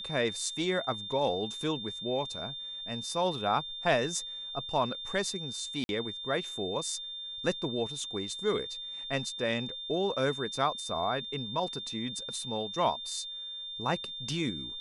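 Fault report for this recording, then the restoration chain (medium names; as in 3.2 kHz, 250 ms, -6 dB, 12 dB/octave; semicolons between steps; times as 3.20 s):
whine 3.6 kHz -38 dBFS
1.12 s: dropout 2.2 ms
5.84–5.89 s: dropout 51 ms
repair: band-stop 3.6 kHz, Q 30; interpolate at 1.12 s, 2.2 ms; interpolate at 5.84 s, 51 ms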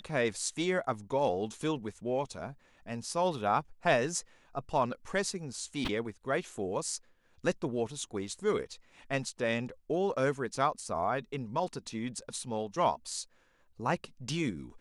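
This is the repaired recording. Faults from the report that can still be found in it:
nothing left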